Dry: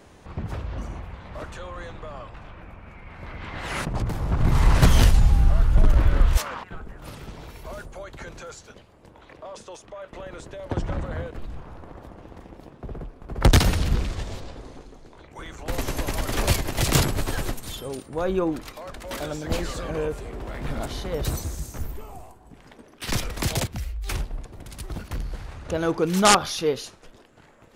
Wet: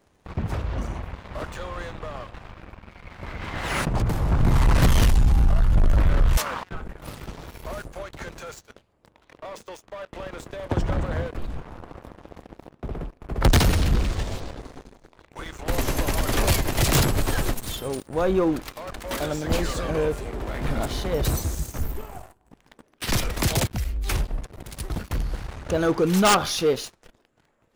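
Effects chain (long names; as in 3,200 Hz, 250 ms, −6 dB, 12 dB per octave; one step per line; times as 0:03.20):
high-shelf EQ 6,500 Hz +5 dB
leveller curve on the samples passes 3
parametric band 9,600 Hz −3.5 dB 2.4 octaves
level −7.5 dB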